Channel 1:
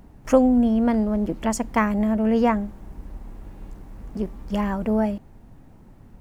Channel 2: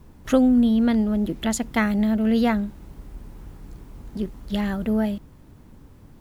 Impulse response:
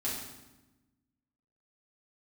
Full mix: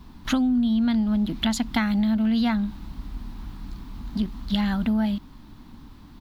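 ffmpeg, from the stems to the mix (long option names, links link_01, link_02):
-filter_complex "[0:a]lowshelf=frequency=200:gain=11.5,volume=-12.5dB[link_01];[1:a]adelay=1.1,volume=0.5dB[link_02];[link_01][link_02]amix=inputs=2:normalize=0,equalizer=frequency=125:width_type=o:width=1:gain=-5,equalizer=frequency=250:width_type=o:width=1:gain=8,equalizer=frequency=500:width_type=o:width=1:gain=-12,equalizer=frequency=1000:width_type=o:width=1:gain=8,equalizer=frequency=4000:width_type=o:width=1:gain=12,equalizer=frequency=8000:width_type=o:width=1:gain=-5,acompressor=threshold=-20dB:ratio=6"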